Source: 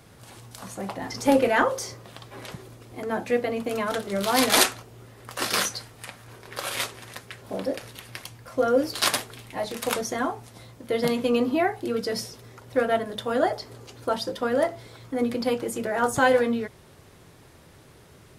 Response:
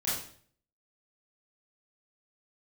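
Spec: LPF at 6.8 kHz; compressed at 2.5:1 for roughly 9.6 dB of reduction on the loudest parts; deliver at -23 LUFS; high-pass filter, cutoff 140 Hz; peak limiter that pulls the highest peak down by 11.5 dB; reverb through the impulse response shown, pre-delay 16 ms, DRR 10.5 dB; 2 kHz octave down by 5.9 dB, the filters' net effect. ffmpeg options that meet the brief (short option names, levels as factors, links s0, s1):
-filter_complex "[0:a]highpass=140,lowpass=6800,equalizer=f=2000:t=o:g=-8,acompressor=threshold=0.0282:ratio=2.5,alimiter=level_in=1.19:limit=0.0631:level=0:latency=1,volume=0.841,asplit=2[s0][s1];[1:a]atrim=start_sample=2205,adelay=16[s2];[s1][s2]afir=irnorm=-1:irlink=0,volume=0.133[s3];[s0][s3]amix=inputs=2:normalize=0,volume=4.73"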